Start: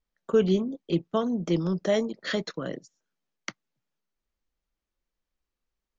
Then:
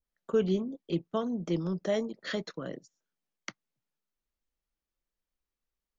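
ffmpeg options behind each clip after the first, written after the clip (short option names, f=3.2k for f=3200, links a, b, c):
-af "adynamicequalizer=threshold=0.00794:dfrequency=1600:dqfactor=0.7:tfrequency=1600:tqfactor=0.7:attack=5:release=100:ratio=0.375:range=2:mode=cutabove:tftype=highshelf,volume=-5dB"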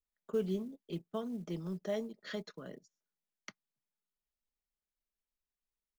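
-af "aecho=1:1:4.8:0.35,acrusher=bits=8:mode=log:mix=0:aa=0.000001,volume=-9dB"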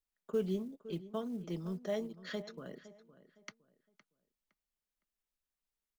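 -filter_complex "[0:a]asplit=2[a][b];[b]adelay=512,lowpass=f=3k:p=1,volume=-16dB,asplit=2[c][d];[d]adelay=512,lowpass=f=3k:p=1,volume=0.29,asplit=2[e][f];[f]adelay=512,lowpass=f=3k:p=1,volume=0.29[g];[a][c][e][g]amix=inputs=4:normalize=0"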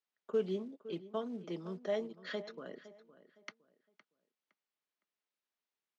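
-af "highpass=270,lowpass=4.4k,volume=2dB"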